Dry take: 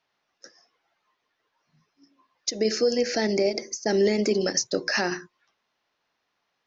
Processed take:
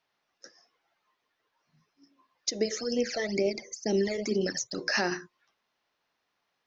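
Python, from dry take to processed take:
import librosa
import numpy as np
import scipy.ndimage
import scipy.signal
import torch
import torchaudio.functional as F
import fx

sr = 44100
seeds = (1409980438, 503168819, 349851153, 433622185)

y = fx.phaser_stages(x, sr, stages=12, low_hz=250.0, high_hz=1600.0, hz=2.1, feedback_pct=40, at=(2.64, 4.77), fade=0.02)
y = y * librosa.db_to_amplitude(-2.5)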